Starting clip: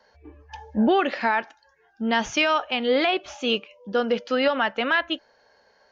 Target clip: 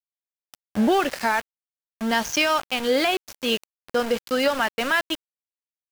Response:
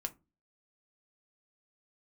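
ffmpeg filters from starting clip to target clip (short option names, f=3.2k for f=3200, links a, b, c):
-af "adynamicequalizer=threshold=0.00447:dfrequency=4900:dqfactor=2.5:tfrequency=4900:tqfactor=2.5:attack=5:release=100:ratio=0.375:range=2:mode=boostabove:tftype=bell,aexciter=amount=2.8:drive=2.3:freq=5k,aeval=exprs='val(0)+0.00501*sin(2*PI*1600*n/s)':c=same,aeval=exprs='val(0)*gte(abs(val(0)),0.0398)':c=same"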